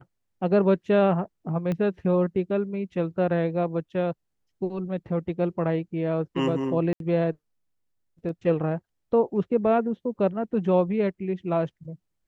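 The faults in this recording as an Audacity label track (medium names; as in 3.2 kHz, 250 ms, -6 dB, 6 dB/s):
1.720000	1.720000	pop -18 dBFS
6.930000	7.000000	dropout 72 ms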